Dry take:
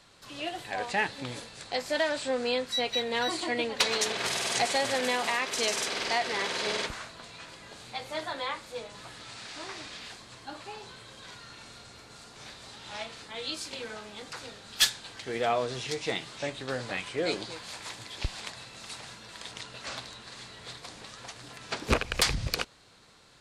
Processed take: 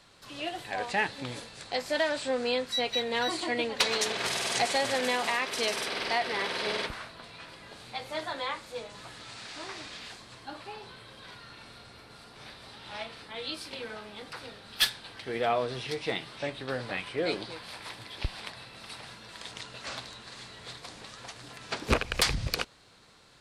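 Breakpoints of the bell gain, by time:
bell 6900 Hz 0.51 oct
5.26 s -2.5 dB
5.8 s -12 dB
7.33 s -12 dB
8.29 s -2.5 dB
10.18 s -2.5 dB
10.82 s -13.5 dB
18.86 s -13.5 dB
19.48 s -2.5 dB

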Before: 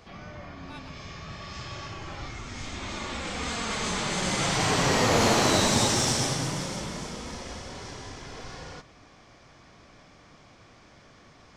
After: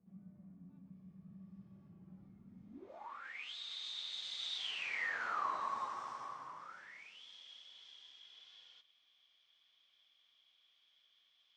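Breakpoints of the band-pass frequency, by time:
band-pass, Q 14
2.69 s 190 Hz
2.96 s 690 Hz
3.56 s 3700 Hz
4.55 s 3700 Hz
5.47 s 1100 Hz
6.59 s 1100 Hz
7.24 s 3300 Hz

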